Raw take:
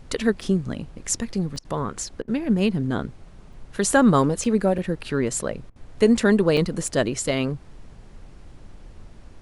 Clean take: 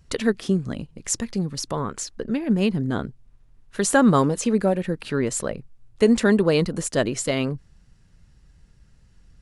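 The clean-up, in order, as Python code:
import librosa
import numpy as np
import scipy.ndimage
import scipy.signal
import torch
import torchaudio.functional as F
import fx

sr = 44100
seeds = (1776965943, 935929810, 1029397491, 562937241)

y = fx.fix_interpolate(x, sr, at_s=(0.41, 1.56, 3.53, 4.44, 4.78, 6.57, 6.88), length_ms=3.4)
y = fx.fix_interpolate(y, sr, at_s=(1.59, 2.22, 5.7), length_ms=57.0)
y = fx.noise_reduce(y, sr, print_start_s=3.11, print_end_s=3.61, reduce_db=9.0)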